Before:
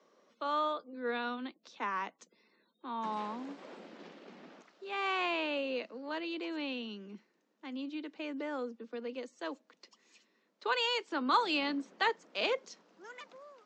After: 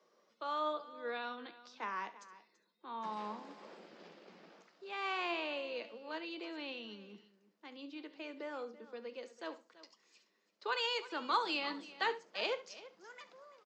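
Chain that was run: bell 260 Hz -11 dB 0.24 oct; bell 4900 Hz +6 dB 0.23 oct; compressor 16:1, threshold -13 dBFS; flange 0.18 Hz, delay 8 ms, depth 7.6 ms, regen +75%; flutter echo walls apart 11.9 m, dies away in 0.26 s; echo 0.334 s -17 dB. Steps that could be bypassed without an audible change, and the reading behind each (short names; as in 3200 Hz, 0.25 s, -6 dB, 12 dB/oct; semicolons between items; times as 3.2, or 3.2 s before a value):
compressor, threshold -13 dBFS: input peak -17.0 dBFS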